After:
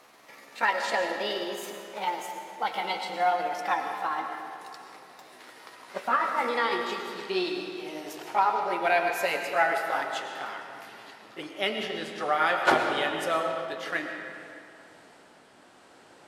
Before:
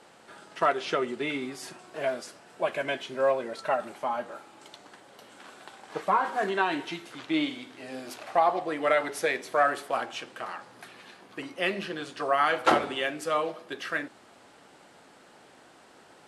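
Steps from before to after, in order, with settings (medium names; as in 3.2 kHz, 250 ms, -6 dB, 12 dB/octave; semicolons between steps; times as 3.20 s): pitch bend over the whole clip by +6 st ending unshifted; algorithmic reverb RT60 2.5 s, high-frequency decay 0.7×, pre-delay 65 ms, DRR 4 dB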